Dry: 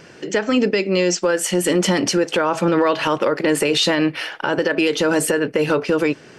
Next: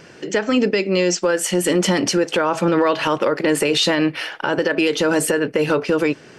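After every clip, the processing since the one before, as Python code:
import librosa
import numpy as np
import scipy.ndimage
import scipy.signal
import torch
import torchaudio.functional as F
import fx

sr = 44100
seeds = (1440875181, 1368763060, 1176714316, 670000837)

y = x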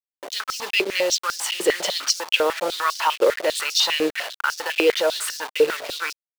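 y = fx.delta_hold(x, sr, step_db=-23.0)
y = fx.dynamic_eq(y, sr, hz=4000.0, q=1.1, threshold_db=-38.0, ratio=4.0, max_db=6)
y = fx.filter_held_highpass(y, sr, hz=10.0, low_hz=440.0, high_hz=5400.0)
y = y * 10.0 ** (-6.0 / 20.0)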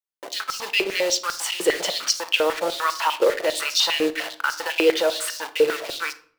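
y = fx.room_shoebox(x, sr, seeds[0], volume_m3=770.0, walls='furnished', distance_m=0.7)
y = y * 10.0 ** (-1.0 / 20.0)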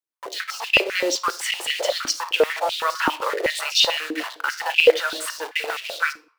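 y = fx.filter_held_highpass(x, sr, hz=7.8, low_hz=290.0, high_hz=2700.0)
y = y * 10.0 ** (-2.5 / 20.0)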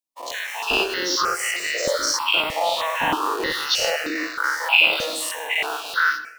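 y = fx.spec_dilate(x, sr, span_ms=120)
y = fx.rev_plate(y, sr, seeds[1], rt60_s=0.65, hf_ratio=1.0, predelay_ms=90, drr_db=14.0)
y = fx.phaser_held(y, sr, hz=3.2, low_hz=410.0, high_hz=3200.0)
y = y * 10.0 ** (-2.0 / 20.0)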